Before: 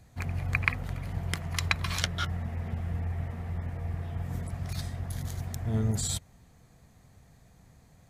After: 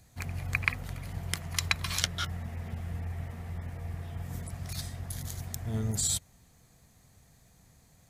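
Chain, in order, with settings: high shelf 3400 Hz +10 dB; gain -4 dB

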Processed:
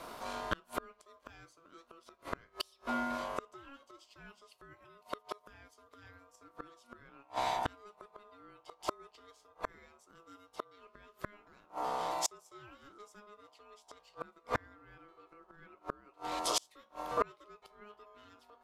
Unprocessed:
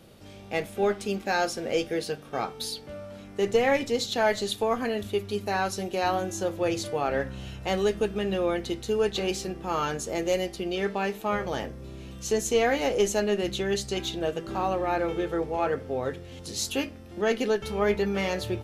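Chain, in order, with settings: flipped gate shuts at -24 dBFS, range -36 dB; ring modulator 830 Hz; gain +8 dB

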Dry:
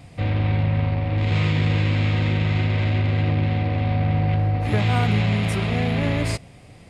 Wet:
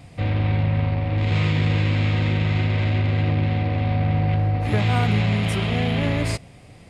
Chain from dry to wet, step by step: 5.46–6.06 bell 3100 Hz +6.5 dB 0.2 oct

